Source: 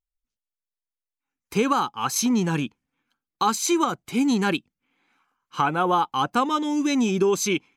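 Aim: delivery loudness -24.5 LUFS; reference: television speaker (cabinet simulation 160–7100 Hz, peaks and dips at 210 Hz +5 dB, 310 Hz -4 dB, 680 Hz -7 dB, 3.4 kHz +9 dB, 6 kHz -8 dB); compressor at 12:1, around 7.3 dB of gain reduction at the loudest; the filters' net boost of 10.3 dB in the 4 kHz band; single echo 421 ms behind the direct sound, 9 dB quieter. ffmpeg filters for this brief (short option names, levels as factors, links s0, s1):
-af "equalizer=f=4000:t=o:g=7.5,acompressor=threshold=0.0708:ratio=12,highpass=f=160:w=0.5412,highpass=f=160:w=1.3066,equalizer=f=210:t=q:w=4:g=5,equalizer=f=310:t=q:w=4:g=-4,equalizer=f=680:t=q:w=4:g=-7,equalizer=f=3400:t=q:w=4:g=9,equalizer=f=6000:t=q:w=4:g=-8,lowpass=f=7100:w=0.5412,lowpass=f=7100:w=1.3066,aecho=1:1:421:0.355,volume=1.41"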